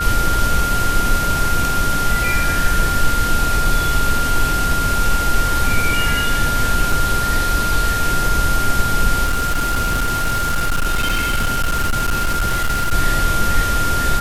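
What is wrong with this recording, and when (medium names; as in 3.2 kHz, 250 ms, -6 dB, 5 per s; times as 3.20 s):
whine 1.4 kHz -19 dBFS
6.92 s: dropout 4 ms
9.24–12.93 s: clipped -13.5 dBFS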